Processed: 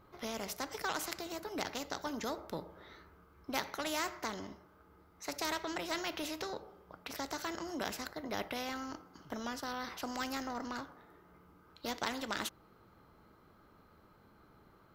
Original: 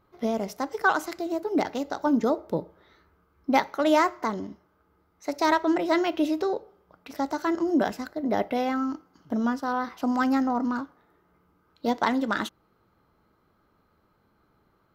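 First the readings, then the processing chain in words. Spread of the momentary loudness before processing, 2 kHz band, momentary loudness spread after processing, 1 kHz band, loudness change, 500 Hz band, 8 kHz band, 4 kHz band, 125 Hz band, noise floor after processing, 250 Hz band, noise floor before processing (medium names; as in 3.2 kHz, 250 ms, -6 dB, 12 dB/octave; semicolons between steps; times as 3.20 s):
10 LU, -10.0 dB, 12 LU, -13.5 dB, -13.0 dB, -14.5 dB, +1.5 dB, -2.0 dB, -10.0 dB, -64 dBFS, -17.0 dB, -68 dBFS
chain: spectrum-flattening compressor 2:1; trim -5.5 dB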